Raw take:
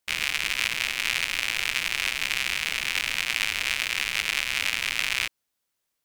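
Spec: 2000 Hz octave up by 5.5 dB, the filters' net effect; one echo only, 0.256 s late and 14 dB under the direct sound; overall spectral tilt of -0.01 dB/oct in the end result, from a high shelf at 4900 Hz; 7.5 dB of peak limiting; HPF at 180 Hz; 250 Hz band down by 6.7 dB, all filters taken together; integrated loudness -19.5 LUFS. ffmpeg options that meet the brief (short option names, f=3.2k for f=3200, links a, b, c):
-af "highpass=180,equalizer=f=250:t=o:g=-7.5,equalizer=f=2k:t=o:g=8,highshelf=f=4.9k:g=-6,alimiter=limit=-11dB:level=0:latency=1,aecho=1:1:256:0.2,volume=4.5dB"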